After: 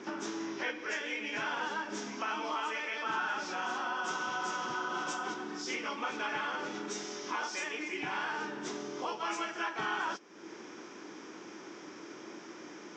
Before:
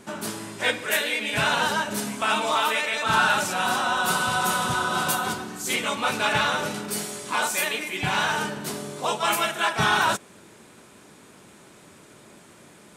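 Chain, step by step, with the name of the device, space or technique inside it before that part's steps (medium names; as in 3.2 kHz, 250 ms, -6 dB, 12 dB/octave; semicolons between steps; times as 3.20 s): 0.46–1.07 s: low-pass 11 kHz 12 dB/octave; hearing aid with frequency lowering (knee-point frequency compression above 2.5 kHz 1.5:1; compression 2.5:1, threshold -42 dBFS, peak gain reduction 16.5 dB; cabinet simulation 300–6500 Hz, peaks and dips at 320 Hz +10 dB, 620 Hz -6 dB, 2.8 kHz -3 dB, 4.3 kHz -9 dB); trim +3 dB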